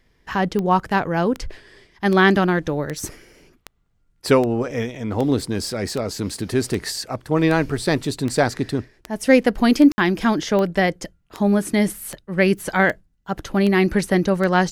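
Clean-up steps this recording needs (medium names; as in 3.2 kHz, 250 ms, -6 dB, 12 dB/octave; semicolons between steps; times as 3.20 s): de-click; room tone fill 9.92–9.98 s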